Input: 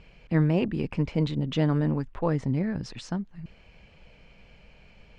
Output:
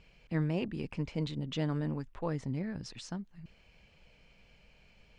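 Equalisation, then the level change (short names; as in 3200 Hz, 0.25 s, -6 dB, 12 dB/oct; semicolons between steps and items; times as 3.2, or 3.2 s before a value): high shelf 3600 Hz +9 dB; -9.0 dB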